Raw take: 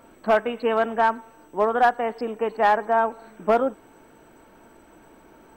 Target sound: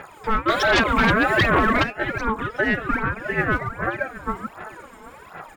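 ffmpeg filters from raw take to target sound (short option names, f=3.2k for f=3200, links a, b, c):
-filter_complex "[0:a]asplit=2[a][b];[b]adelay=392,lowpass=f=1.5k:p=1,volume=-6dB,asplit=2[c][d];[d]adelay=392,lowpass=f=1.5k:p=1,volume=0.35,asplit=2[e][f];[f]adelay=392,lowpass=f=1.5k:p=1,volume=0.35,asplit=2[g][h];[h]adelay=392,lowpass=f=1.5k:p=1,volume=0.35[i];[a][c][e][g][i]amix=inputs=5:normalize=0,acompressor=threshold=-26dB:ratio=12,aphaser=in_gain=1:out_gain=1:delay=4.8:decay=0.76:speed=1.3:type=sinusoidal,acontrast=61,asplit=3[j][k][l];[j]afade=t=out:st=0.48:d=0.02[m];[k]aeval=exprs='0.596*sin(PI/2*3.55*val(0)/0.596)':c=same,afade=t=in:st=0.48:d=0.02,afade=t=out:st=1.82:d=0.02[n];[l]afade=t=in:st=1.82:d=0.02[o];[m][n][o]amix=inputs=3:normalize=0,alimiter=level_in=8.5dB:limit=-1dB:release=50:level=0:latency=1,aeval=exprs='val(0)*sin(2*PI*870*n/s+870*0.25/1.5*sin(2*PI*1.5*n/s))':c=same,volume=-9dB"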